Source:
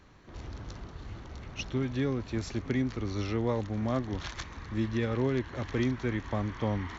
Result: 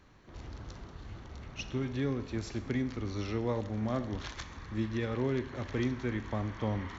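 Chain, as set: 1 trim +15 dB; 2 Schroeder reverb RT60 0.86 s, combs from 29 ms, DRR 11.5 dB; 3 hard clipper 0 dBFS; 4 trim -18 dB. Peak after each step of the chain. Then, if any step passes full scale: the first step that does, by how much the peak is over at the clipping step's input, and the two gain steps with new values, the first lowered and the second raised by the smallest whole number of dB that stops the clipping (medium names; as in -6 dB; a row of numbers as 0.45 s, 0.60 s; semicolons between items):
-2.0 dBFS, -2.0 dBFS, -2.0 dBFS, -20.0 dBFS; nothing clips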